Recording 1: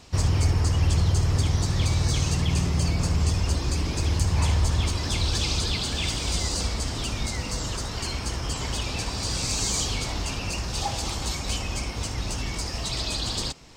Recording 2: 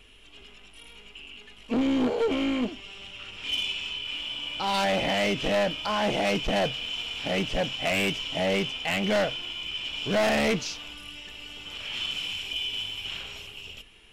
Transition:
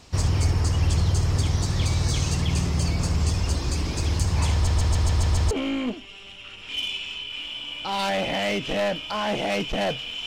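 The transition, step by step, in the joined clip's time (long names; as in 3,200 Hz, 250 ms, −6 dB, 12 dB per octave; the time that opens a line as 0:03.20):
recording 1
0:04.53: stutter in place 0.14 s, 7 plays
0:05.51: continue with recording 2 from 0:02.26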